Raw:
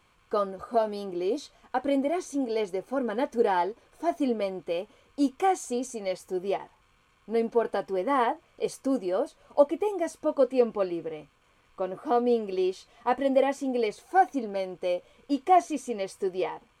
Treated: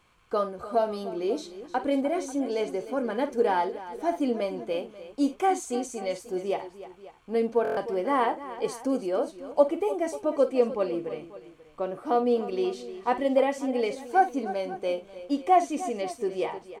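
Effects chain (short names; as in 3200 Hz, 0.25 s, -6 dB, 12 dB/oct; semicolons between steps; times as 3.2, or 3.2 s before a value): tapped delay 44/50/53/304/540 ms -19.5/-17.5/-14.5/-14.5/-18 dB; stuck buffer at 7.63, samples 1024, times 5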